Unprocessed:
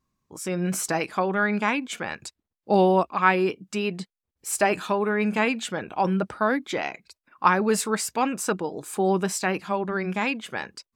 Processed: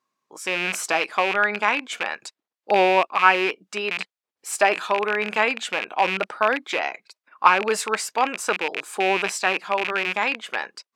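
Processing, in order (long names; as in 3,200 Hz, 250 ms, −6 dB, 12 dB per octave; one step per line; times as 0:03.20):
loose part that buzzes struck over −36 dBFS, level −17 dBFS
high-pass filter 500 Hz 12 dB per octave
high-shelf EQ 7,900 Hz −11 dB
level +4.5 dB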